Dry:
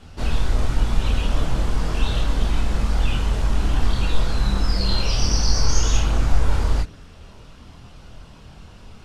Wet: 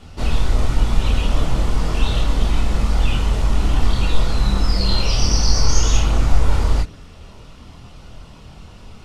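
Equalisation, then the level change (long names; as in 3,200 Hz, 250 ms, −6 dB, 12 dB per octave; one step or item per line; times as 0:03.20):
notch filter 1,600 Hz, Q 11
+3.0 dB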